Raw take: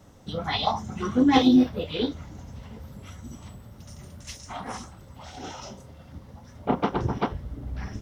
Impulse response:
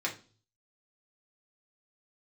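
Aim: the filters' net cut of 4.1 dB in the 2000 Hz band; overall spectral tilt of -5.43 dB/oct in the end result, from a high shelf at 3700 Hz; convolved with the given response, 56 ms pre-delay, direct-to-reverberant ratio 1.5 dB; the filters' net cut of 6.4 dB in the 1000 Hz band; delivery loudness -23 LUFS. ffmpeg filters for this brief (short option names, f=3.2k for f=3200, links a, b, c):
-filter_complex "[0:a]equalizer=f=1k:t=o:g=-8.5,equalizer=f=2k:t=o:g=-4,highshelf=f=3.7k:g=4.5,asplit=2[a][b];[1:a]atrim=start_sample=2205,adelay=56[c];[b][c]afir=irnorm=-1:irlink=0,volume=-7.5dB[d];[a][d]amix=inputs=2:normalize=0,volume=2dB"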